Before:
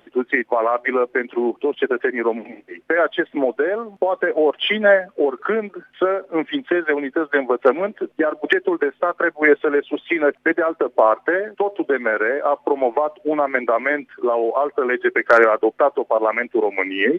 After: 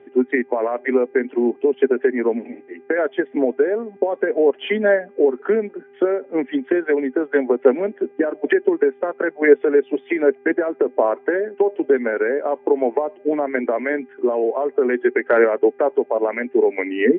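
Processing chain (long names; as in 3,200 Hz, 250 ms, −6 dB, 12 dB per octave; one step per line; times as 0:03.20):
hum with harmonics 400 Hz, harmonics 6, −51 dBFS −6 dB per octave
loudspeaker in its box 110–2,600 Hz, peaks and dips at 120 Hz +6 dB, 250 Hz +10 dB, 410 Hz +8 dB, 1,200 Hz −10 dB
level −3.5 dB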